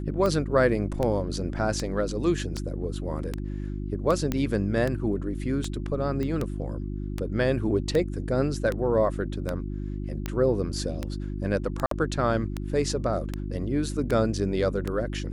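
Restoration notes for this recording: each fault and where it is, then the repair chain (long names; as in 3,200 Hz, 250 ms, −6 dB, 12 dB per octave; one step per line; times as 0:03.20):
mains hum 50 Hz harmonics 7 −32 dBFS
scratch tick 78 rpm −15 dBFS
0:04.32: click −13 dBFS
0:06.23: click −19 dBFS
0:11.86–0:11.91: drop-out 53 ms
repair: click removal
hum removal 50 Hz, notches 7
repair the gap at 0:11.86, 53 ms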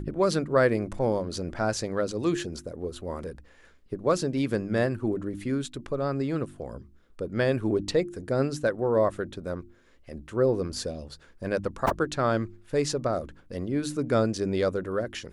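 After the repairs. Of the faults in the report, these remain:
none of them is left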